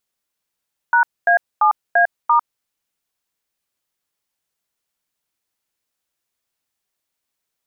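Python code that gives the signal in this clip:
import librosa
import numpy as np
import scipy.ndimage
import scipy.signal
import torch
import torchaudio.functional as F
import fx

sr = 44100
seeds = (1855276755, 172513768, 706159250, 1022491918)

y = fx.dtmf(sr, digits='#A7A*', tone_ms=101, gap_ms=240, level_db=-13.0)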